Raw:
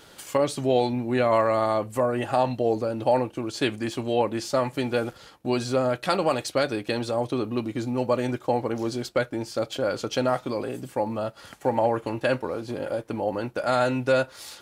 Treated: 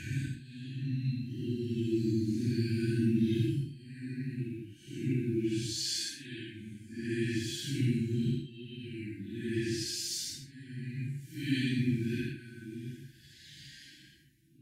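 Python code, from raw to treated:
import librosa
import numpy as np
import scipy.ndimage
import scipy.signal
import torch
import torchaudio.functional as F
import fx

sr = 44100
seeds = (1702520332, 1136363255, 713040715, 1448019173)

y = fx.tape_start_head(x, sr, length_s=2.46)
y = scipy.signal.sosfilt(scipy.signal.butter(2, 58.0, 'highpass', fs=sr, output='sos'), y)
y = fx.auto_swell(y, sr, attack_ms=579.0)
y = fx.brickwall_bandstop(y, sr, low_hz=360.0, high_hz=1500.0)
y = fx.paulstretch(y, sr, seeds[0], factor=4.6, window_s=0.1, from_s=2.28)
y = fx.peak_eq(y, sr, hz=140.0, db=12.0, octaves=0.26)
y = y * 10.0 ** (2.5 / 20.0)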